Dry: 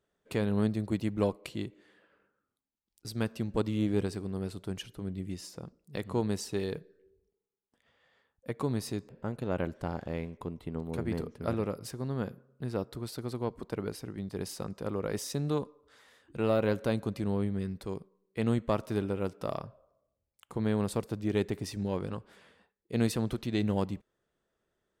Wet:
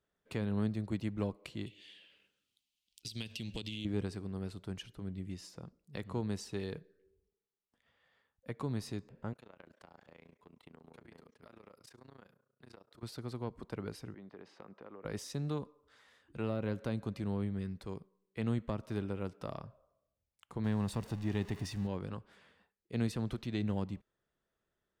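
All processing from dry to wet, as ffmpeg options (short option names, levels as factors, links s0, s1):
-filter_complex "[0:a]asettb=1/sr,asplit=3[s0][s1][s2];[s0]atrim=end=1.664[s3];[s1]atrim=start=1.66:end=3.85,asetpts=PTS-STARTPTS,afade=t=in:d=0.004:c=qsin,afade=t=out:st=2.186:d=0.004:c=qsin,highshelf=f=2000:t=q:w=3:g=14,bandreject=f=50:t=h:w=6,bandreject=f=100:t=h:w=6,acompressor=threshold=0.0316:ratio=6:attack=3.2:release=140:knee=1:detection=peak[s4];[s2]atrim=start=3.846[s5];[s3][s4]acrossfade=d=0.004:c1=hsin:c2=qsin[s6];[s6][s5]acrossfade=d=0.004:c1=qsin:c2=hsin,asettb=1/sr,asplit=3[s7][s8][s9];[s7]atrim=end=9.334[s10];[s8]atrim=start=9.33:end=13.03,asetpts=PTS-STARTPTS,afade=t=in:d=0.004:c=qsin,afade=t=out:st=3.696:d=0.004:c=qsin,highpass=f=590:p=1,acompressor=threshold=0.00891:ratio=16:attack=3.2:release=140:knee=1:detection=peak,tremolo=f=29:d=0.919[s11];[s9]atrim=start=13.026[s12];[s10][s11]acrossfade=d=0.004:c1=hsin:c2=qsin[s13];[s13][s12]acrossfade=d=0.004:c1=qsin:c2=hsin,asettb=1/sr,asplit=3[s14][s15][s16];[s14]atrim=end=14.144[s17];[s15]atrim=start=14.14:end=15.05,asetpts=PTS-STARTPTS,afade=t=in:d=0.004:c=qsin,afade=t=out:st=0.906:d=0.004:c=qsin,highpass=300,lowpass=2100,acompressor=threshold=0.01:ratio=5:attack=3.2:release=140:knee=1:detection=peak[s18];[s16]atrim=start=15.046[s19];[s17][s18]acrossfade=d=0.004:c1=hsin:c2=qsin[s20];[s20][s19]acrossfade=d=0.004:c1=qsin:c2=hsin,asettb=1/sr,asplit=3[s21][s22][s23];[s21]atrim=end=20.644[s24];[s22]atrim=start=20.64:end=21.87,asetpts=PTS-STARTPTS,afade=t=in:d=0.004:c=qsin,afade=t=out:st=1.226:d=0.004:c=qsin,aeval=exprs='val(0)+0.5*0.00841*sgn(val(0))':c=same,aecho=1:1:1.1:0.32,atrim=end_sample=54243[s25];[s23]atrim=start=21.866[s26];[s24][s25]acrossfade=d=0.004:c1=hsin:c2=qsin[s27];[s27][s26]acrossfade=d=0.004:c1=qsin:c2=hsin,equalizer=f=420:w=0.74:g=-4,acrossover=split=380[s28][s29];[s29]acompressor=threshold=0.0158:ratio=6[s30];[s28][s30]amix=inputs=2:normalize=0,highshelf=f=9200:g=-11.5,volume=0.708"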